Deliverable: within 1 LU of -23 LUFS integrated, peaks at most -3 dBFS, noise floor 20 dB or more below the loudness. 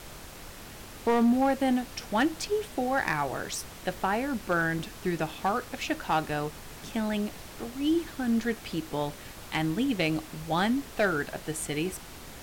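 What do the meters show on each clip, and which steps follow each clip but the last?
clipped 0.5%; flat tops at -18.5 dBFS; noise floor -45 dBFS; noise floor target -50 dBFS; loudness -29.5 LUFS; peak -18.5 dBFS; loudness target -23.0 LUFS
-> clip repair -18.5 dBFS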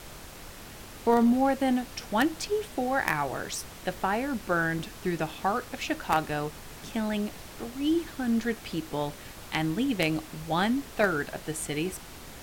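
clipped 0.0%; noise floor -45 dBFS; noise floor target -49 dBFS
-> noise print and reduce 6 dB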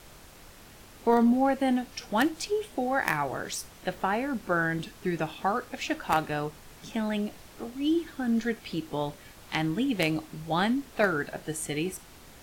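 noise floor -51 dBFS; loudness -29.0 LUFS; peak -9.5 dBFS; loudness target -23.0 LUFS
-> gain +6 dB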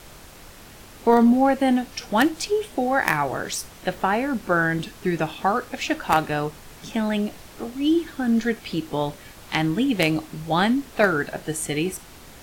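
loudness -23.0 LUFS; peak -3.5 dBFS; noise floor -45 dBFS

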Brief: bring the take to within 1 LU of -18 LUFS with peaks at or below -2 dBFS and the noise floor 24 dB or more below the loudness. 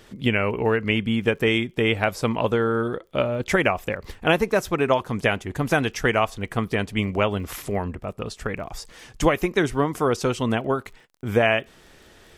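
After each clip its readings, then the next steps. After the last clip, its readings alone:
ticks 27/s; loudness -23.5 LUFS; peak -5.5 dBFS; loudness target -18.0 LUFS
-> de-click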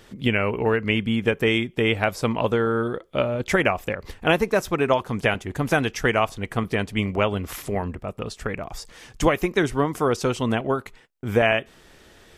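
ticks 0/s; loudness -23.5 LUFS; peak -5.5 dBFS; loudness target -18.0 LUFS
-> gain +5.5 dB; limiter -2 dBFS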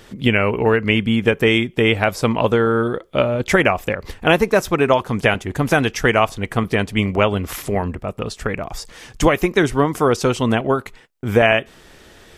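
loudness -18.5 LUFS; peak -2.0 dBFS; noise floor -47 dBFS

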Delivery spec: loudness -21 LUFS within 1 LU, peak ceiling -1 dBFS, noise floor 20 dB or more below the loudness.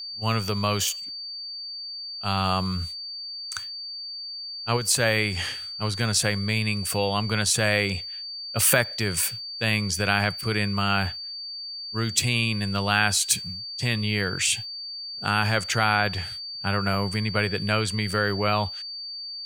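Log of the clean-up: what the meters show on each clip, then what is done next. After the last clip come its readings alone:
steady tone 4600 Hz; tone level -33 dBFS; loudness -25.0 LUFS; peak -3.0 dBFS; loudness target -21.0 LUFS
-> notch 4600 Hz, Q 30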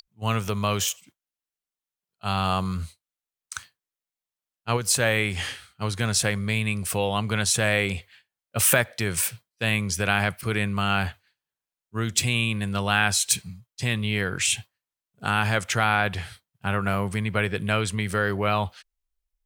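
steady tone none; loudness -24.5 LUFS; peak -3.0 dBFS; loudness target -21.0 LUFS
-> gain +3.5 dB; limiter -1 dBFS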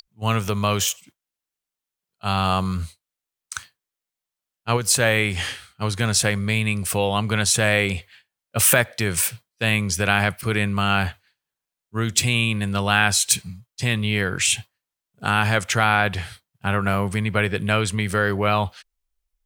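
loudness -21.0 LUFS; peak -1.0 dBFS; noise floor -87 dBFS

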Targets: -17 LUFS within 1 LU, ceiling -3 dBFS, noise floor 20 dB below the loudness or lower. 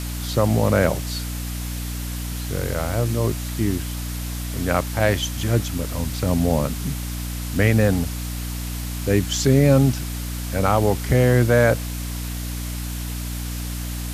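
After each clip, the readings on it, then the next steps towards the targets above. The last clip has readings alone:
hum 60 Hz; harmonics up to 300 Hz; hum level -26 dBFS; noise floor -29 dBFS; noise floor target -43 dBFS; loudness -22.5 LUFS; peak -3.0 dBFS; loudness target -17.0 LUFS
-> notches 60/120/180/240/300 Hz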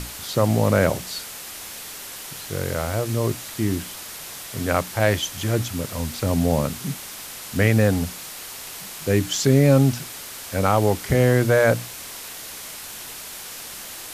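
hum none; noise floor -37 dBFS; noise floor target -42 dBFS
-> denoiser 6 dB, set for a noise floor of -37 dBFS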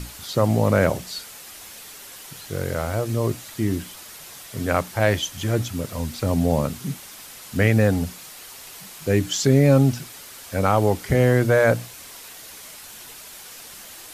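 noise floor -41 dBFS; noise floor target -42 dBFS
-> denoiser 6 dB, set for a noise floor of -41 dBFS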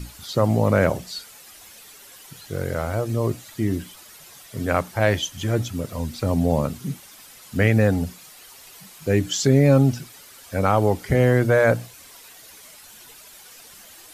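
noise floor -46 dBFS; loudness -22.0 LUFS; peak -4.0 dBFS; loudness target -17.0 LUFS
-> gain +5 dB; limiter -3 dBFS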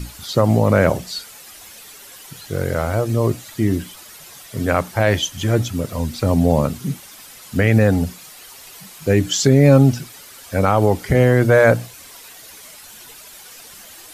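loudness -17.5 LUFS; peak -3.0 dBFS; noise floor -41 dBFS

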